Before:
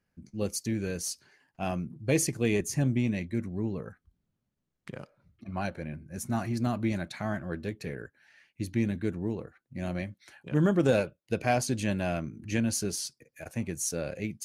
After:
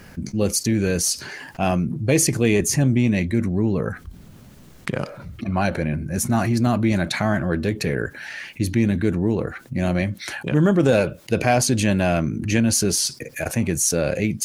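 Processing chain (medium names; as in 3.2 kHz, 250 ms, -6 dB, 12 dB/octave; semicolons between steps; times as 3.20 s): level flattener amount 50%; trim +6 dB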